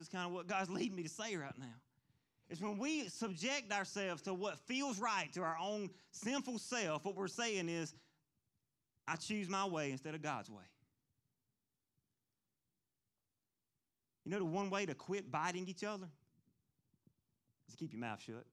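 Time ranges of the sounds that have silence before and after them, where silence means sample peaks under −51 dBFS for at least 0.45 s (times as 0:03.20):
0:02.50–0:07.91
0:09.08–0:10.62
0:14.26–0:16.08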